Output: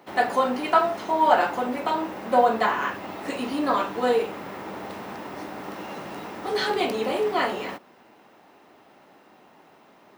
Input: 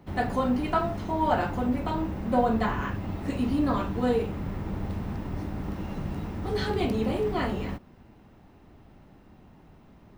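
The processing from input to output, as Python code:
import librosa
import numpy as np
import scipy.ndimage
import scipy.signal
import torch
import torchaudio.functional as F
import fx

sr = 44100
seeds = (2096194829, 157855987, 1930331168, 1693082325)

y = scipy.signal.sosfilt(scipy.signal.butter(2, 470.0, 'highpass', fs=sr, output='sos'), x)
y = F.gain(torch.from_numpy(y), 7.5).numpy()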